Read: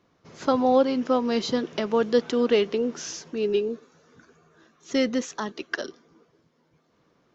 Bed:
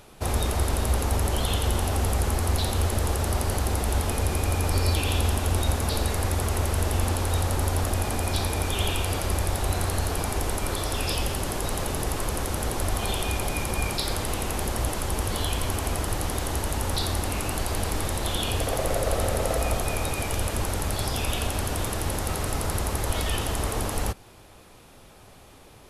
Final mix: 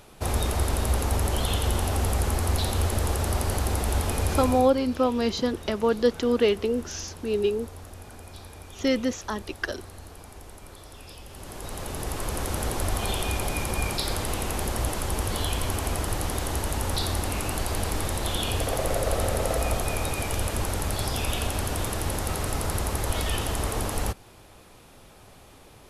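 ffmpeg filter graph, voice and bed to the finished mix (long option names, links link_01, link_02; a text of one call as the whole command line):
ffmpeg -i stem1.wav -i stem2.wav -filter_complex "[0:a]adelay=3900,volume=-0.5dB[link_01];[1:a]volume=16.5dB,afade=type=out:start_time=4.37:duration=0.35:silence=0.141254,afade=type=in:start_time=11.26:duration=1.27:silence=0.141254[link_02];[link_01][link_02]amix=inputs=2:normalize=0" out.wav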